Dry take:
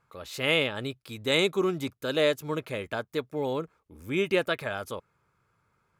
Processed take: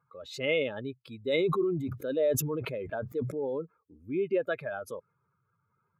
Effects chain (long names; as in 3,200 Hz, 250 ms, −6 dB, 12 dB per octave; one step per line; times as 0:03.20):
expanding power law on the bin magnitudes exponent 2
high-pass filter 120 Hz
0:01.22–0:03.45: level that may fall only so fast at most 42 dB per second
level −2.5 dB